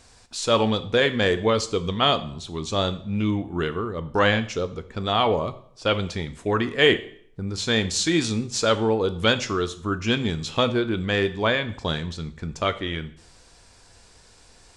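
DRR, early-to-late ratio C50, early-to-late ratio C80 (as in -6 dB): 11.0 dB, 15.5 dB, 18.0 dB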